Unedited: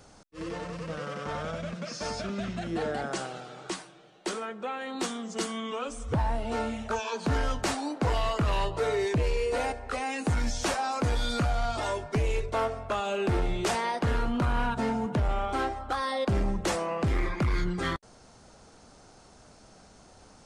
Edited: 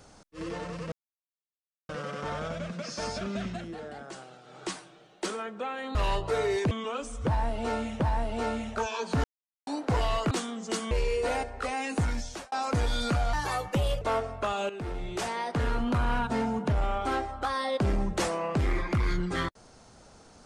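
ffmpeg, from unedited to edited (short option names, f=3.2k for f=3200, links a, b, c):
-filter_complex "[0:a]asplit=15[a][b][c][d][e][f][g][h][i][j][k][l][m][n][o];[a]atrim=end=0.92,asetpts=PTS-STARTPTS,afade=t=out:st=0.916:d=0.004:c=hsin,apad=pad_dur=0.97[p];[b]atrim=start=0.92:end=2.77,asetpts=PTS-STARTPTS,afade=t=in:d=0.004:c=hsin,afade=t=out:st=1.59:d=0.26:silence=0.316228[q];[c]atrim=start=2.77:end=3.46,asetpts=PTS-STARTPTS,volume=-10dB[r];[d]atrim=start=3.46:end=4.982,asetpts=PTS-STARTPTS,afade=t=in:d=0.26:silence=0.316228[s];[e]atrim=start=8.438:end=9.202[t];[f]atrim=start=5.578:end=6.872[u];[g]atrim=start=6.128:end=7.37,asetpts=PTS-STARTPTS,afade=t=out:st=1.238:d=0.004:c=hsin[v];[h]atrim=start=7.37:end=7.8,asetpts=PTS-STARTPTS,volume=0[w];[i]atrim=start=7.8:end=8.442,asetpts=PTS-STARTPTS,afade=t=in:d=0.004:c=hsin[x];[j]atrim=start=4.978:end=5.582[y];[k]atrim=start=9.198:end=10.81,asetpts=PTS-STARTPTS,afade=t=out:st=1.082:d=0.53[z];[l]atrim=start=10.81:end=11.624,asetpts=PTS-STARTPTS,afade=t=in:d=0.004:c=hsin[aa];[m]atrim=start=11.62:end=12.49,asetpts=PTS-STARTPTS,asetrate=56007,aresample=44100,atrim=end_sample=30210,asetpts=PTS-STARTPTS[ab];[n]atrim=start=12.486:end=13.17,asetpts=PTS-STARTPTS,afade=t=out:st=0.68:d=0.004:c=hsin:silence=0.251189[ac];[o]atrim=start=13.17,asetpts=PTS-STARTPTS,afade=t=in:d=1.13:silence=0.251189[ad];[p][q][r][s]concat=n=4:v=0:a=1[ae];[ae][t]acrossfade=d=0.004:c1=hsin:c2=hsin[af];[af][u]acrossfade=d=0.004:c1=hsin:c2=hsin[ag];[v][w][x]concat=n=3:v=0:a=1[ah];[ag][ah]acrossfade=d=0.004:c1=hsin:c2=hsin[ai];[ai][y]acrossfade=d=0.004:c1=hsin:c2=hsin[aj];[z][aa]concat=n=2:v=0:a=1[ak];[aj][ak]acrossfade=d=0.004:c1=hsin:c2=hsin[al];[al][ab]acrossfade=d=0.004:c1=hsin:c2=hsin[am];[ac][ad]concat=n=2:v=0:a=1[an];[am][an]acrossfade=d=0.004:c1=hsin:c2=hsin"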